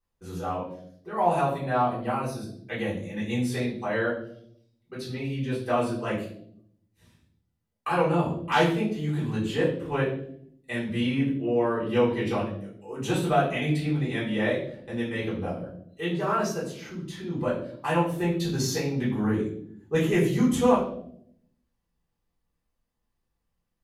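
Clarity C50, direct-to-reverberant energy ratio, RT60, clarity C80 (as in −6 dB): 6.0 dB, −10.0 dB, 0.65 s, 9.5 dB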